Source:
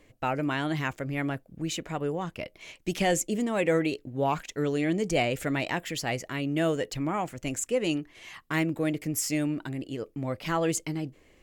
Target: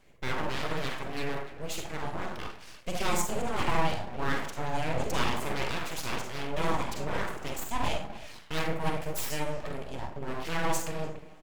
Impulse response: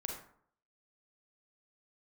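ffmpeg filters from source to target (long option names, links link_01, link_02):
-filter_complex "[0:a]asplit=2[link_01][link_02];[link_02]adelay=290,highpass=300,lowpass=3400,asoftclip=type=hard:threshold=-23dB,volume=-15dB[link_03];[link_01][link_03]amix=inputs=2:normalize=0[link_04];[1:a]atrim=start_sample=2205[link_05];[link_04][link_05]afir=irnorm=-1:irlink=0,aeval=exprs='abs(val(0))':channel_layout=same"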